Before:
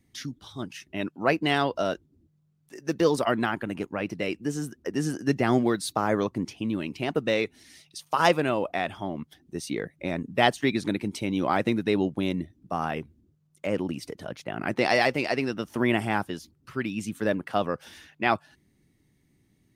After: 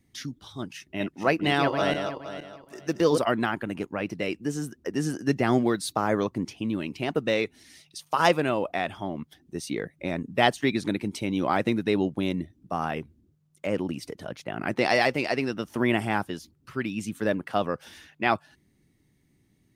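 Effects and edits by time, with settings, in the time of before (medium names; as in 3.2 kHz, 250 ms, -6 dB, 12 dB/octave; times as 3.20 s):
0.77–3.18 s: backward echo that repeats 234 ms, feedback 45%, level -5 dB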